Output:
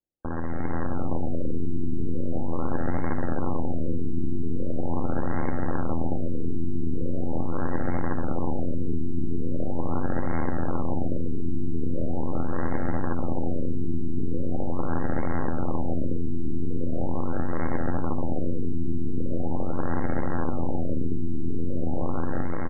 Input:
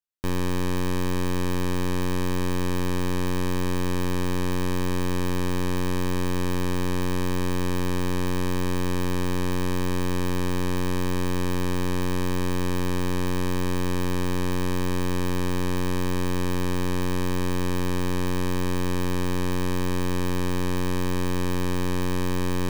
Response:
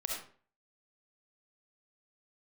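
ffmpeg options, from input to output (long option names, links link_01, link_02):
-filter_complex "[0:a]equalizer=frequency=2800:width=1.1:gain=11,acrusher=samples=27:mix=1:aa=0.000001:lfo=1:lforange=27:lforate=2.2,highshelf=frequency=9100:gain=-10,aecho=1:1:3.4:0.31,asplit=2[link_01][link_02];[1:a]atrim=start_sample=2205[link_03];[link_02][link_03]afir=irnorm=-1:irlink=0,volume=-13.5dB[link_04];[link_01][link_04]amix=inputs=2:normalize=0,dynaudnorm=framelen=510:gausssize=3:maxgain=4dB,aecho=1:1:86|172|258:0.0668|0.0327|0.016,adynamicsmooth=sensitivity=5:basefreq=2800,asetrate=40440,aresample=44100,atempo=1.09051,afftfilt=real='re*lt(b*sr/1024,400*pow(2200/400,0.5+0.5*sin(2*PI*0.41*pts/sr)))':imag='im*lt(b*sr/1024,400*pow(2200/400,0.5+0.5*sin(2*PI*0.41*pts/sr)))':win_size=1024:overlap=0.75,volume=-7.5dB"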